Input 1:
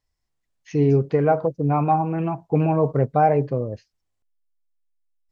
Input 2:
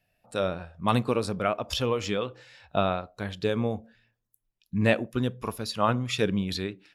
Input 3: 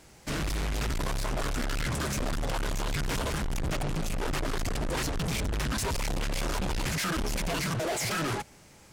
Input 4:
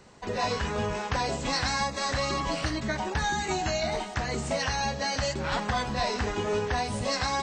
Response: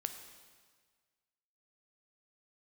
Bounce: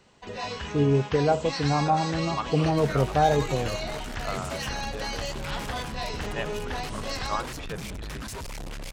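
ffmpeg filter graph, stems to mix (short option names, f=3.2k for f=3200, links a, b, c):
-filter_complex "[0:a]volume=-4dB[a];[1:a]bandpass=f=1.2k:t=q:w=1.1:csg=0,adelay=1500,volume=-4.5dB[b];[2:a]adelay=2500,volume=-6.5dB[c];[3:a]equalizer=f=3k:w=2:g=6.5,volume=-6dB[d];[a][b][c][d]amix=inputs=4:normalize=0"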